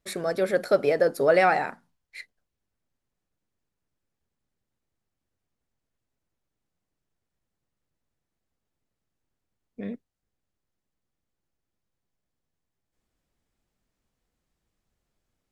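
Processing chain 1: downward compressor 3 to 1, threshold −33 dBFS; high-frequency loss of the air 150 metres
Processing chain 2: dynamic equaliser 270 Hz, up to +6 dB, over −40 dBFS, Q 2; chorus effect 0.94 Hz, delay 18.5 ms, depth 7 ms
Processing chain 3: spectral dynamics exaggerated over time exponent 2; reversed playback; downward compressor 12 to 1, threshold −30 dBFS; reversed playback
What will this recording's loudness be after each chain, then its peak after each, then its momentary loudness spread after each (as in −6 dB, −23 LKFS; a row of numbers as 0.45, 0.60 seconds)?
−36.0, −25.5, −37.0 LKFS; −20.5, −11.0, −22.0 dBFS; 14, 18, 20 LU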